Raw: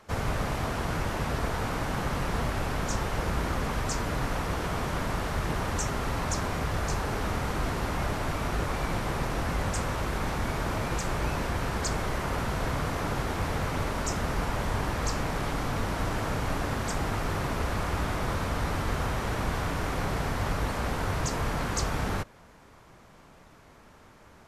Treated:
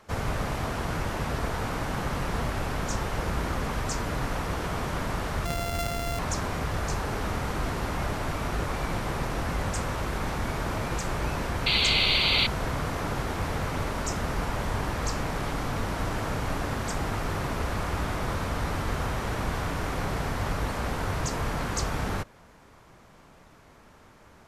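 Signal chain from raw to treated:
0:05.45–0:06.19: samples sorted by size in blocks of 64 samples
0:11.66–0:12.47: sound drawn into the spectrogram noise 2,000–4,700 Hz −24 dBFS

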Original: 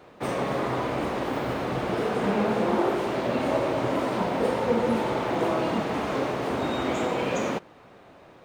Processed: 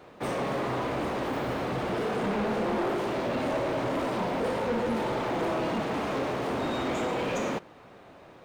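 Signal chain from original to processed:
soft clipping −24 dBFS, distortion −12 dB

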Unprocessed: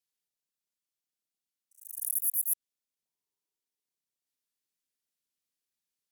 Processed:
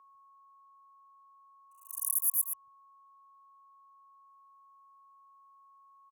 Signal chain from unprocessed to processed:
band-splitting scrambler in four parts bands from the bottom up 3412
0:01.90–0:02.45: drawn EQ curve 360 Hz 0 dB, 590 Hz +3 dB, 2,200 Hz −9 dB, 4,400 Hz +13 dB, 15,000 Hz +7 dB
steady tone 1,100 Hz −50 dBFS
multiband delay without the direct sound highs, lows 150 ms, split 200 Hz
level −7.5 dB

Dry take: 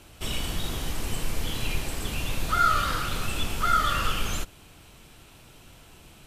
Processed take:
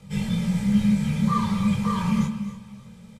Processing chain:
loose part that buzzes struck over −39 dBFS, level −26 dBFS
on a send: single-tap delay 483 ms −14 dB
on the sum: time stretch by phase vocoder 0.51×
low-pass filter 10,000 Hz 12 dB per octave
notch filter 3,000 Hz, Q 11
comb filter 2.7 ms, depth 74%
repeating echo 303 ms, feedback 31%, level −16.5 dB
frequency shifter −220 Hz
low-shelf EQ 490 Hz +10.5 dB
micro pitch shift up and down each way 10 cents

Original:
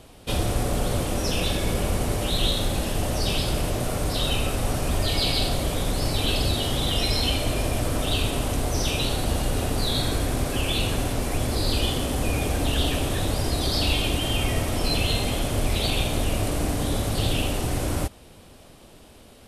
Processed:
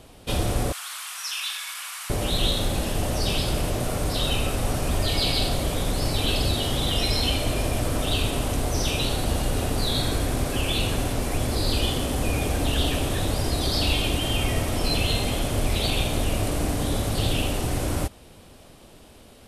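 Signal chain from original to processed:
0:00.72–0:02.10: Butterworth high-pass 1,100 Hz 36 dB per octave

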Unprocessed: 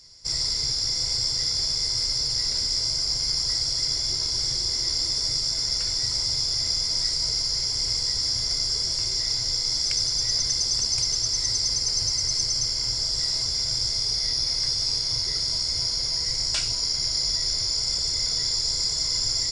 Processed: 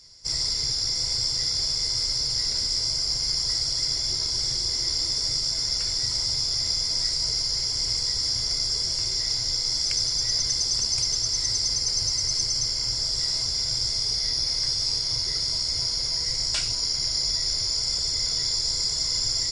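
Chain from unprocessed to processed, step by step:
MP3 64 kbit/s 32,000 Hz

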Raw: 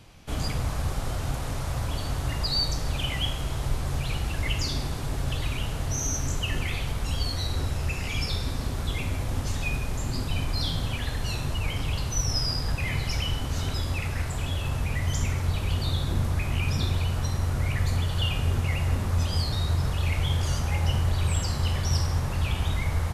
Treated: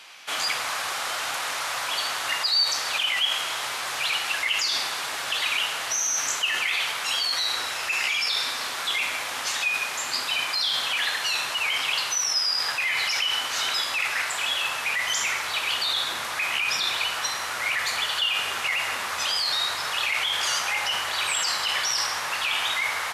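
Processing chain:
high-pass filter 1,400 Hz 12 dB per octave
high-shelf EQ 5,600 Hz −9 dB
in parallel at 0 dB: compressor whose output falls as the input rises −40 dBFS, ratio −0.5
on the sum: level +8.5 dB

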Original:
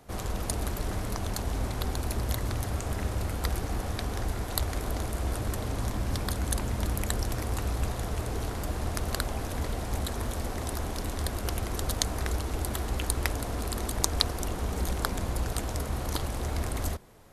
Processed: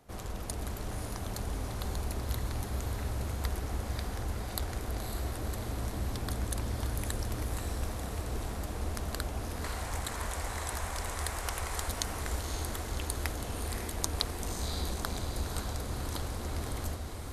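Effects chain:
0:09.64–0:11.89: graphic EQ with 10 bands 125 Hz −4 dB, 250 Hz −9 dB, 1,000 Hz +6 dB, 2,000 Hz +7 dB, 8,000 Hz +8 dB
feedback delay with all-pass diffusion 549 ms, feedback 61%, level −5 dB
level −6.5 dB

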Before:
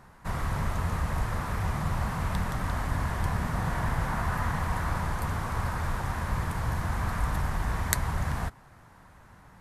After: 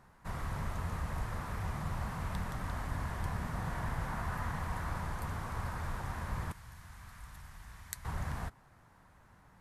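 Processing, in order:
0:06.52–0:08.05: guitar amp tone stack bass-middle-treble 5-5-5
level −8 dB

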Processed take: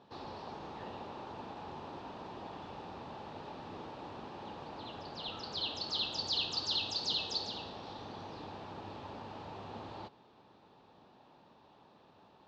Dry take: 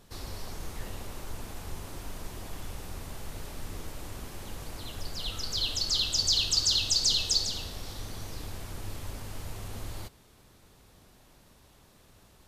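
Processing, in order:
loudspeaker in its box 190–3,600 Hz, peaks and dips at 860 Hz +8 dB, 1,500 Hz −4 dB, 2,100 Hz −10 dB, 3,100 Hz −4 dB

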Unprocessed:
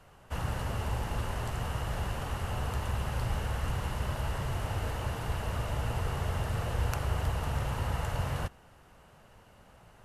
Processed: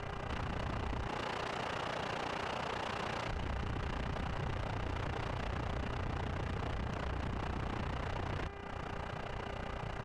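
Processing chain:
0:01.07–0:03.29: high-pass filter 240 Hz 12 dB per octave
downward compressor 6 to 1, threshold −46 dBFS, peak gain reduction 19 dB
amplitude modulation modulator 30 Hz, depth 95%
sine wavefolder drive 17 dB, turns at −31.5 dBFS
hum with harmonics 400 Hz, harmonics 6, −53 dBFS −4 dB per octave
soft clipping −36 dBFS, distortion −15 dB
high-frequency loss of the air 130 metres
single-tap delay 139 ms −15.5 dB
level +2.5 dB

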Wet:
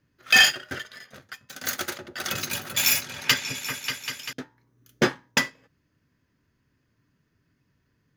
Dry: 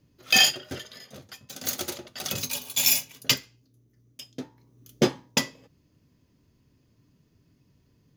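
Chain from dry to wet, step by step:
parametric band 1,600 Hz +14 dB 1 octave
leveller curve on the samples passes 1
0:01.79–0:04.33: echo whose low-pass opens from repeat to repeat 196 ms, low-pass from 400 Hz, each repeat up 2 octaves, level −3 dB
level −5 dB

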